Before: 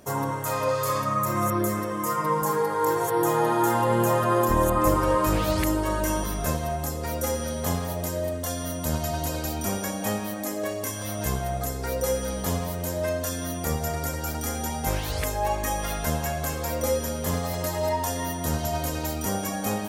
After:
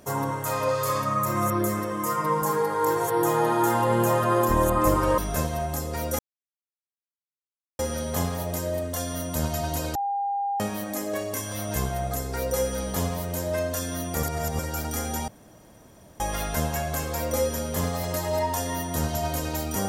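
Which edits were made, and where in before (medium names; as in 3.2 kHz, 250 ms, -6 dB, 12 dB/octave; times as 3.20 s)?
5.18–6.28 s: delete
7.29 s: insert silence 1.60 s
9.45–10.10 s: bleep 803 Hz -24 dBFS
13.73–14.09 s: reverse
14.78–15.70 s: room tone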